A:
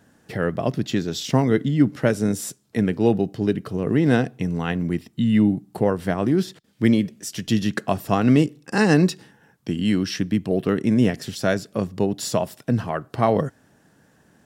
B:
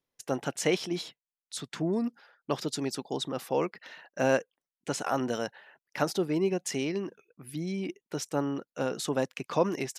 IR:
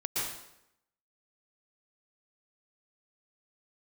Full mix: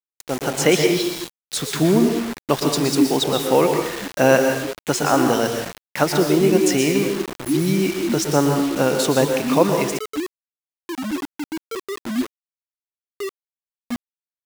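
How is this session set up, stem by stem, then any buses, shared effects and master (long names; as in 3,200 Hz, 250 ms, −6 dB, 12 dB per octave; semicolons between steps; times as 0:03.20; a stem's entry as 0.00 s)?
−7.5 dB, 1.20 s, no send, flat-topped bell 760 Hz +13.5 dB 2.8 octaves; spectral peaks only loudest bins 1; formant resonators in series i
+0.5 dB, 0.00 s, send −6 dB, no processing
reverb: on, RT60 0.80 s, pre-delay 108 ms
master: automatic gain control gain up to 9.5 dB; bit reduction 5 bits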